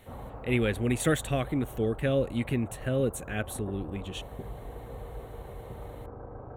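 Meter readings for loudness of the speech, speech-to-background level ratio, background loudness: -30.0 LUFS, 13.5 dB, -43.5 LUFS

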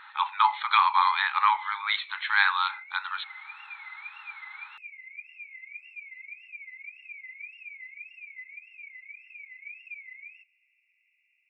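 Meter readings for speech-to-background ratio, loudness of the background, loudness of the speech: 18.0 dB, -43.0 LUFS, -25.0 LUFS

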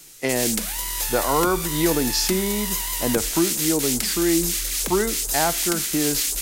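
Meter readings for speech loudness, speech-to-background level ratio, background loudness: -24.5 LUFS, -1.0 dB, -23.5 LUFS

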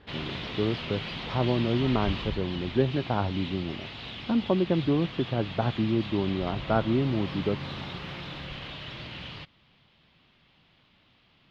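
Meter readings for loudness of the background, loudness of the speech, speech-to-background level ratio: -37.0 LUFS, -28.5 LUFS, 8.5 dB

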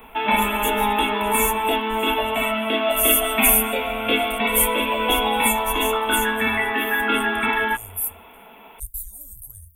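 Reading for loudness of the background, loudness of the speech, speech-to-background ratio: -21.0 LUFS, -23.5 LUFS, -2.5 dB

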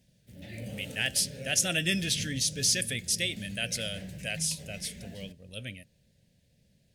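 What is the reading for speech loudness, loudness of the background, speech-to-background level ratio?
-29.0 LUFS, -43.5 LUFS, 14.5 dB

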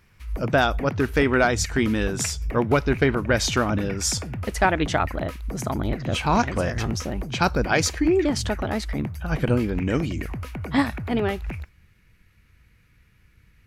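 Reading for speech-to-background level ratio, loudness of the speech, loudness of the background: 9.0 dB, -24.0 LUFS, -33.0 LUFS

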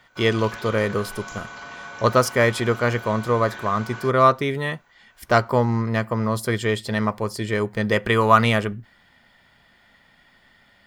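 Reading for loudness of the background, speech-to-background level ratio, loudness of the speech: -37.0 LUFS, 15.5 dB, -21.5 LUFS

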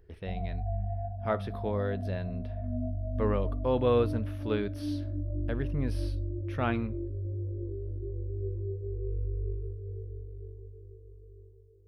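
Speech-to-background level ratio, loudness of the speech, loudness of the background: 3.0 dB, -33.0 LUFS, -36.0 LUFS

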